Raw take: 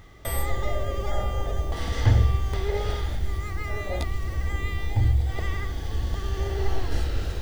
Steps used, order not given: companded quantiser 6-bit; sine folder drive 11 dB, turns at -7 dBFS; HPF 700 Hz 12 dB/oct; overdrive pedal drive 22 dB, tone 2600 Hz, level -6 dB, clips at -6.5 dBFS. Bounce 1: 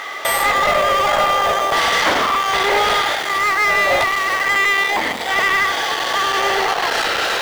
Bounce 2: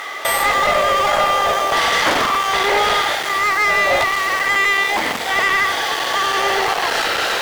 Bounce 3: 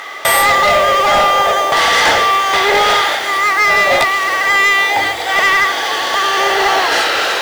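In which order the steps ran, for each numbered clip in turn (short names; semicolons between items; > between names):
sine folder > HPF > overdrive pedal > companded quantiser; companded quantiser > sine folder > HPF > overdrive pedal; HPF > overdrive pedal > sine folder > companded quantiser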